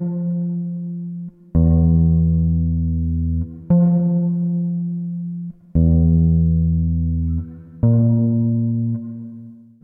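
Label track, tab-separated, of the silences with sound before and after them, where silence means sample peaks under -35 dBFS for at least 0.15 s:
1.290000	1.550000	silence
5.510000	5.750000	silence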